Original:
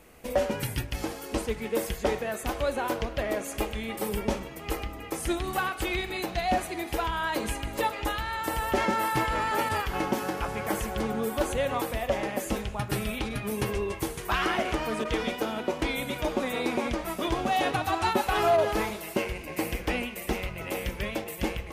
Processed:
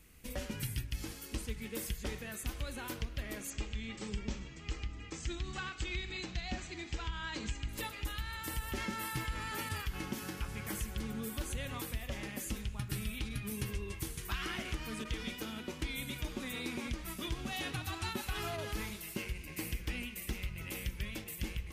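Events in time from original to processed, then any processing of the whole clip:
3.5–7.69 steep low-pass 7900 Hz 96 dB/oct
whole clip: passive tone stack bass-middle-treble 6-0-2; compressor 2.5:1, threshold -45 dBFS; gain +11 dB

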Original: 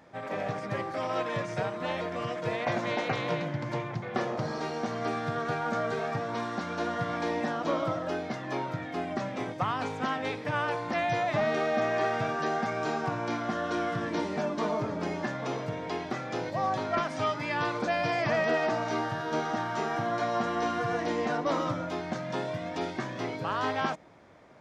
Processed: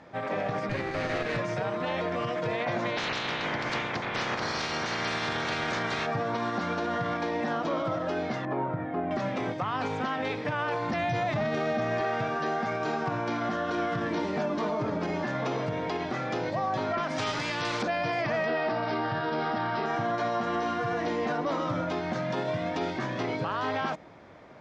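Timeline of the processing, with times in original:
0.69–1.39 minimum comb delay 0.45 ms
2.96–6.05 spectral limiter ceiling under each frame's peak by 22 dB
8.45–9.11 LPF 1300 Hz
10.89–12.01 tone controls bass +9 dB, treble +4 dB
17.18–17.83 spectral compressor 2:1
18.46–19.86 careless resampling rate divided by 4×, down none, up filtered
whole clip: LPF 5500 Hz 12 dB/oct; limiter -26.5 dBFS; gain +5 dB

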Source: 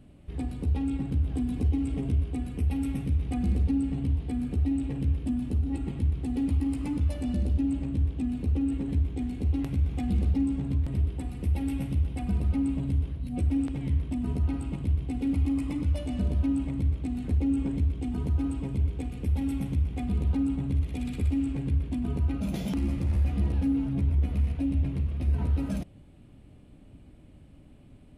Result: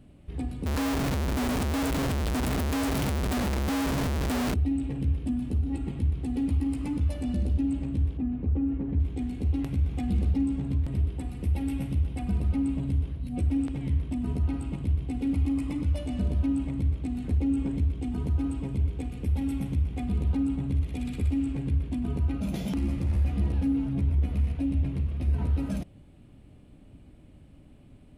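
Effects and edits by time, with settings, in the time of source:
0.66–4.54 infinite clipping
8.17–9 LPF 1600 Hz

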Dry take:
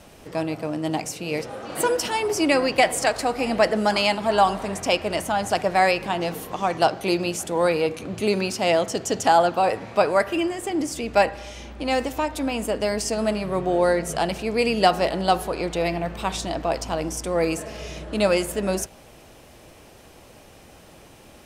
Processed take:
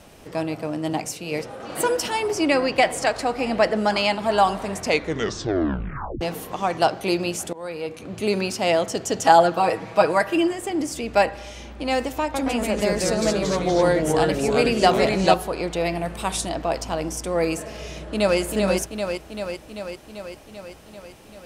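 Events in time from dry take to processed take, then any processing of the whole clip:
0.93–1.6 three-band expander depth 40%
2.31–4.19 high shelf 10000 Hz -11 dB
4.76 tape stop 1.45 s
7.53–8.35 fade in, from -20.5 dB
9.21–10.53 comb 6.2 ms
12.22–15.34 echoes that change speed 0.12 s, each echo -2 st, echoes 3
15.95–16.49 bell 9800 Hz +14 dB 0.53 oct
17.89–18.39 echo throw 0.39 s, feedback 70%, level -4 dB

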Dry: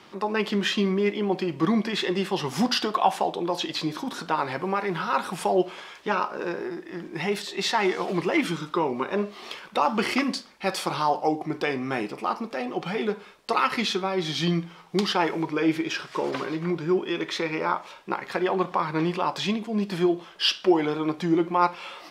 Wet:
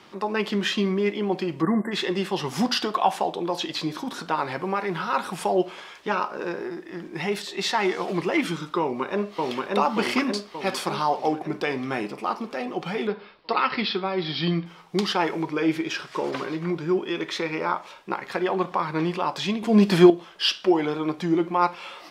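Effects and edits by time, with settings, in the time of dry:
1.62–1.92 spectral delete 2100–7300 Hz
8.8–9.65 echo throw 0.58 s, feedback 60%, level -1 dB
13.07–14.66 steep low-pass 5200 Hz 96 dB/oct
19.63–20.1 gain +9.5 dB

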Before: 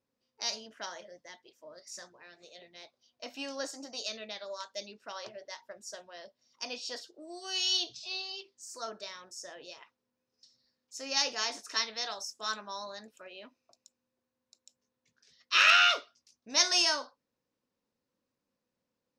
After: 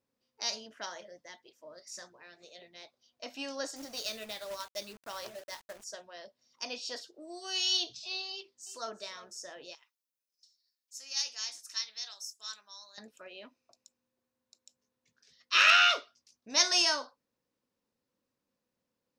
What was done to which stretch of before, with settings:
3.76–5.84 companded quantiser 4-bit
8.31–9.01 echo throw 0.35 s, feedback 15%, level -17 dB
9.75–12.98 pre-emphasis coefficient 0.97

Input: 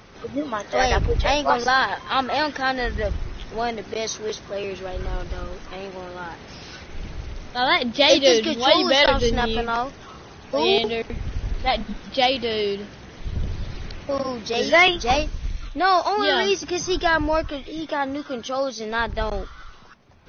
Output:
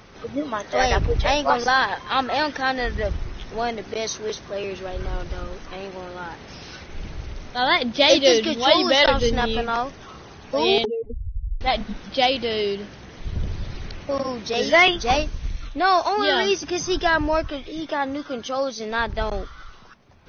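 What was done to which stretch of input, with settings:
10.85–11.61 spectral contrast raised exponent 3.9

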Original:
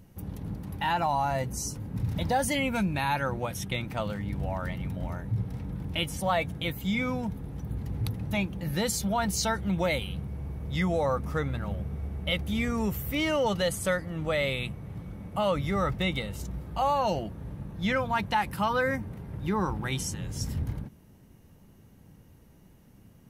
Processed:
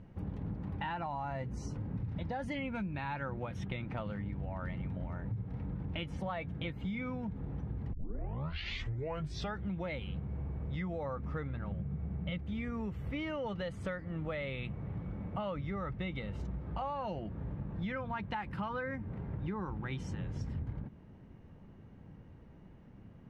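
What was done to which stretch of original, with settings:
7.93 tape start 1.69 s
11.72–12.38 bell 160 Hz +10.5 dB 0.71 oct
whole clip: LPF 2200 Hz 12 dB/oct; dynamic EQ 730 Hz, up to -4 dB, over -41 dBFS, Q 0.93; compressor, threshold -36 dBFS; gain +1 dB

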